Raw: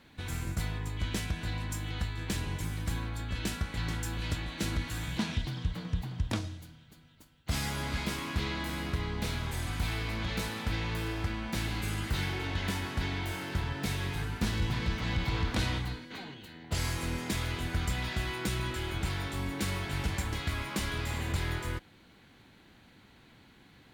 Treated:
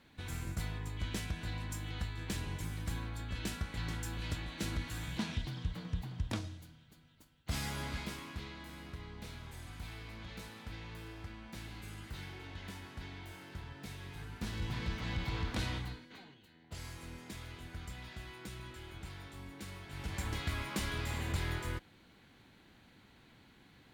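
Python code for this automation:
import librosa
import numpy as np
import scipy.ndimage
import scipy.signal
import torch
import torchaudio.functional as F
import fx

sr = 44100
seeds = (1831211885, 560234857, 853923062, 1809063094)

y = fx.gain(x, sr, db=fx.line((7.83, -5.0), (8.53, -13.5), (14.04, -13.5), (14.79, -6.0), (15.84, -6.0), (16.4, -14.0), (19.86, -14.0), (20.27, -3.5)))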